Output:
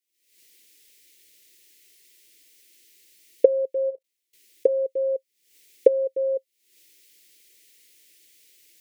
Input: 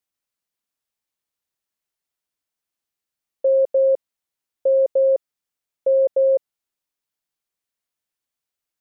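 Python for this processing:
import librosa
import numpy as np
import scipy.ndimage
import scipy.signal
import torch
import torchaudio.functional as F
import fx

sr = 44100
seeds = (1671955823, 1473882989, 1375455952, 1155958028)

y = fx.recorder_agc(x, sr, target_db=-20.0, rise_db_per_s=75.0, max_gain_db=30)
y = fx.curve_eq(y, sr, hz=(220.0, 340.0, 530.0, 800.0, 1300.0, 2000.0), db=(0, 14, 8, -27, -12, 14))
y = fx.level_steps(y, sr, step_db=22, at=(3.89, 4.67), fade=0.02)
y = y * 10.0 ** (-15.0 / 20.0)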